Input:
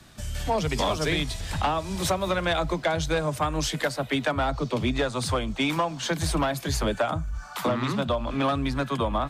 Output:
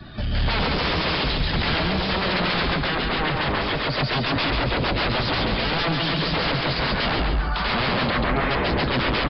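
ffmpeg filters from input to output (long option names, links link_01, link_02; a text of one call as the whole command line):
ffmpeg -i in.wav -filter_complex "[0:a]aeval=exprs='0.158*sin(PI/2*5.01*val(0)/0.158)':channel_layout=same,asettb=1/sr,asplit=3[link_01][link_02][link_03];[link_01]atrim=end=8.104[link_04];[link_02]atrim=start=8.1:end=8.51,asetpts=PTS-STARTPTS,afade=type=in:duration=0.004:curve=qsin,afade=type=out:start_time=0.406:duration=0.004:curve=qsin,highshelf=frequency=2700:width_type=q:width=1.5:gain=-9[link_05];[link_03]atrim=start=8.506[link_06];[link_04][link_05]acrossfade=duration=0.004:curve1=hsin:curve2=qsin[link_07];[link_07][link_06]acrossfade=duration=0.004:curve1=qsin:curve2=hsin,aecho=1:1:137|274|411|548|685|822|959:0.708|0.354|0.177|0.0885|0.0442|0.0221|0.0111,aresample=11025,aresample=44100,asettb=1/sr,asplit=3[link_08][link_09][link_10];[link_08]atrim=end=2.874[link_11];[link_09]atrim=start=2.87:end=3.96,asetpts=PTS-STARTPTS,afade=type=in:duration=0.004:curve=qsin,afade=type=out:start_time=1.086:duration=0.004:curve=qsin,bass=frequency=250:gain=-2,treble=frequency=4000:gain=-5[link_12];[link_10]atrim=start=3.956[link_13];[link_11][link_12]acrossfade=duration=0.004:curve1=hsin:curve2=qsin[link_14];[link_14][link_13]acrossfade=duration=0.004:curve1=qsin:curve2=hsin,afftdn=noise_reduction=12:noise_floor=-37,volume=-5dB" out.wav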